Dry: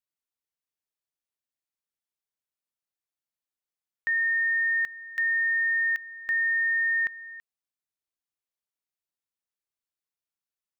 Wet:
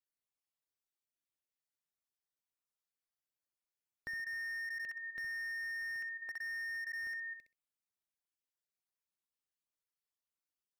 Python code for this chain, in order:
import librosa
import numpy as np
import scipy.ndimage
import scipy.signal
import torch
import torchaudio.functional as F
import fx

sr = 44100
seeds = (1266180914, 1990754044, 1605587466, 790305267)

y = fx.spec_dropout(x, sr, seeds[0], share_pct=24)
y = fx.echo_feedback(y, sr, ms=64, feedback_pct=16, wet_db=-7.0)
y = fx.slew_limit(y, sr, full_power_hz=30.0)
y = y * librosa.db_to_amplitude(-4.0)